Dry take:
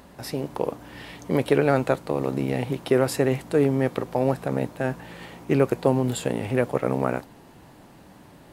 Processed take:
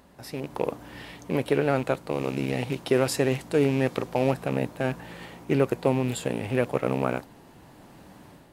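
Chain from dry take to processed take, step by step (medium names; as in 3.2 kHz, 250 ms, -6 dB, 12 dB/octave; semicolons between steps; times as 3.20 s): rattle on loud lows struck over -28 dBFS, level -27 dBFS; 2.10–4.31 s: dynamic bell 5.7 kHz, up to +5 dB, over -46 dBFS, Q 0.74; level rider gain up to 7.5 dB; trim -7 dB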